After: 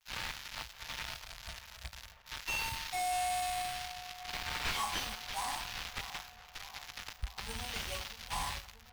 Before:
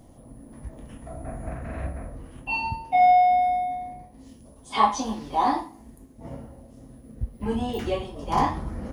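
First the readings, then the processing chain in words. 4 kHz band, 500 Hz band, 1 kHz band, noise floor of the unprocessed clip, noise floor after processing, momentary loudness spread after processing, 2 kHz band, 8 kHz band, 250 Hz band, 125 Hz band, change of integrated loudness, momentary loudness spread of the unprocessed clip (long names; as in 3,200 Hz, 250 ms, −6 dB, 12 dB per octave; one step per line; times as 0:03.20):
+2.5 dB, −17.5 dB, −16.0 dB, −50 dBFS, −56 dBFS, 12 LU, −3.5 dB, +2.5 dB, −22.5 dB, −13.5 dB, −14.0 dB, 23 LU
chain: spike at every zero crossing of −15 dBFS
camcorder AGC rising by 39 dB per second
noise gate −21 dBFS, range −45 dB
dynamic equaliser 7,800 Hz, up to +3 dB, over −33 dBFS, Q 0.8
in parallel at +3 dB: downward compressor, threshold −32 dBFS, peak gain reduction 18 dB
on the sum: sample-rate reduction 9,100 Hz, jitter 0%
guitar amp tone stack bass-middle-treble 10-0-10
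tuned comb filter 56 Hz, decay 0.54 s, mix 30%
on a send: feedback echo with a low-pass in the loop 632 ms, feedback 71%, low-pass 1,500 Hz, level −15.5 dB
on the sum: slew-rate limiting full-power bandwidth 150 Hz
level −5 dB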